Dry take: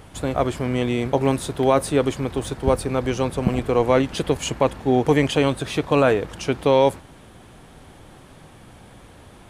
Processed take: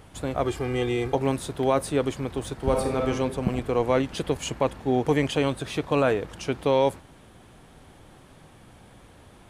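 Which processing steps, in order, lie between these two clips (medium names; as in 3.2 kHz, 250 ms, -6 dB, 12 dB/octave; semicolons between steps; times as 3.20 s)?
0.46–1.15 s: comb 2.5 ms, depth 84%; 2.55–3.10 s: reverb throw, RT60 1 s, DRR 1.5 dB; trim -5 dB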